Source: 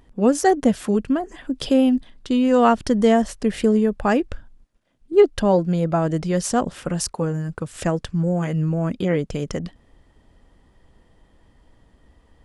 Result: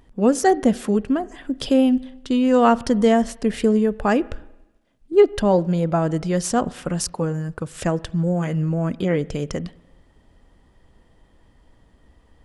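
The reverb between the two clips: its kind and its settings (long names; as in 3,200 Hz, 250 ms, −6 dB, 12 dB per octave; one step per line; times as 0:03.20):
spring reverb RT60 1 s, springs 34/43/47 ms, chirp 50 ms, DRR 20 dB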